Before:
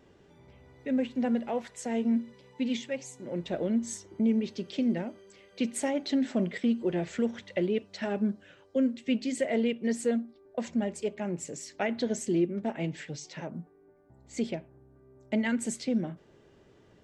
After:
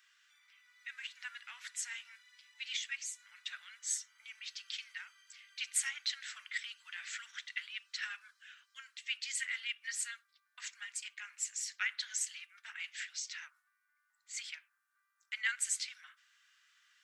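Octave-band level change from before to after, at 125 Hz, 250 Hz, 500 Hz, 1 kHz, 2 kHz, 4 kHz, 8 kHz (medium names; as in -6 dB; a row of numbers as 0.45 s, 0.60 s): under -40 dB, under -40 dB, under -40 dB, -15.0 dB, +1.5 dB, +2.5 dB, +4.0 dB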